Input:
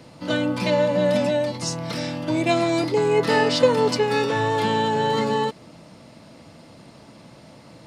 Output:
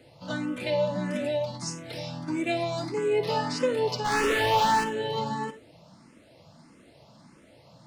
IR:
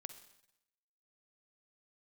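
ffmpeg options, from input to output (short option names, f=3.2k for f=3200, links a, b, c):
-filter_complex "[0:a]asplit=3[a][b][c];[a]afade=t=out:st=4.04:d=0.02[d];[b]asplit=2[e][f];[f]highpass=f=720:p=1,volume=37dB,asoftclip=type=tanh:threshold=-10dB[g];[e][g]amix=inputs=2:normalize=0,lowpass=f=3.4k:p=1,volume=-6dB,afade=t=in:st=4.04:d=0.02,afade=t=out:st=4.83:d=0.02[h];[c]afade=t=in:st=4.83:d=0.02[i];[d][h][i]amix=inputs=3:normalize=0[j];[1:a]atrim=start_sample=2205,atrim=end_sample=4410[k];[j][k]afir=irnorm=-1:irlink=0,asplit=2[l][m];[m]afreqshift=1.6[n];[l][n]amix=inputs=2:normalize=1"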